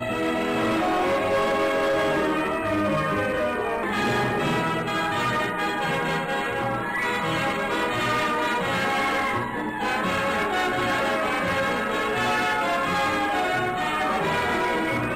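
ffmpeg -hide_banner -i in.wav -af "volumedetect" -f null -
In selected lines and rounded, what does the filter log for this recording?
mean_volume: -24.2 dB
max_volume: -17.3 dB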